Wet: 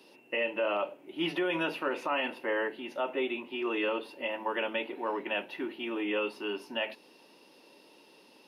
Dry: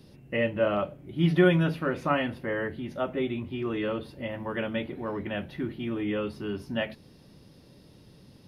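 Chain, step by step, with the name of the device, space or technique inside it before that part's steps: laptop speaker (HPF 310 Hz 24 dB/oct; bell 920 Hz +9.5 dB 0.28 oct; bell 2700 Hz +11.5 dB 0.22 oct; limiter -21 dBFS, peak gain reduction 11.5 dB)

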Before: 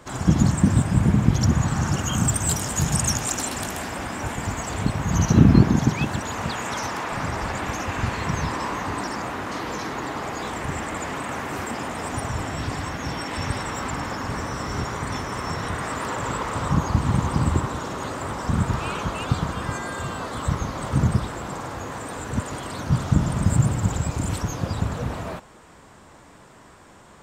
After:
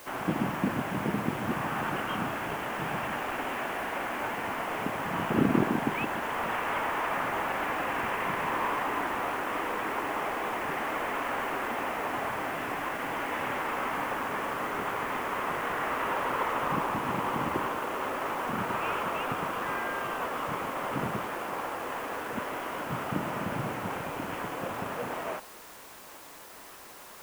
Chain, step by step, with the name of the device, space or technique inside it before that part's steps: army field radio (BPF 370–3300 Hz; CVSD 16 kbps; white noise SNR 19 dB)

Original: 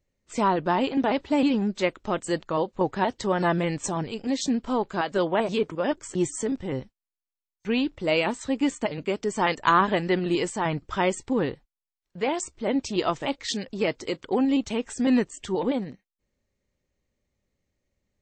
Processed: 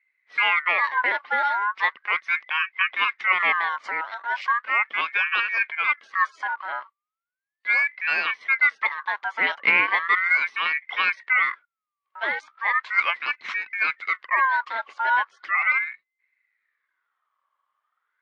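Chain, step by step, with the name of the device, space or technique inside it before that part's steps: voice changer toy (ring modulator with a swept carrier 1600 Hz, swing 30%, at 0.37 Hz; speaker cabinet 460–3700 Hz, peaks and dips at 710 Hz -3 dB, 1100 Hz +7 dB, 2100 Hz +10 dB)

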